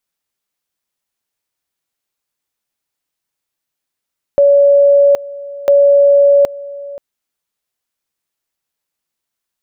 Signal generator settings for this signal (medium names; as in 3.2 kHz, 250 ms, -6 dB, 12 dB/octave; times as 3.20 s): two-level tone 566 Hz -5 dBFS, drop 19.5 dB, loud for 0.77 s, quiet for 0.53 s, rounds 2